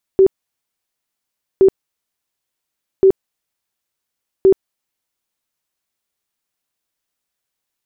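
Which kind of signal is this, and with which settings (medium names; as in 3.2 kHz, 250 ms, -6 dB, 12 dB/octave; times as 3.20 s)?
tone bursts 384 Hz, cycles 29, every 1.42 s, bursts 4, -5.5 dBFS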